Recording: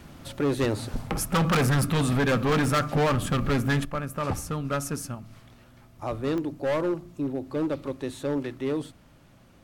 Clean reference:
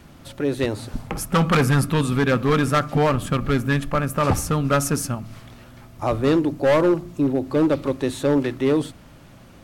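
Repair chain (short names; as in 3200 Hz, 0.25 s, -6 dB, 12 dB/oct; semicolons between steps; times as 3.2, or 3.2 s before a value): clip repair -20 dBFS; de-click; gain correction +9 dB, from 3.85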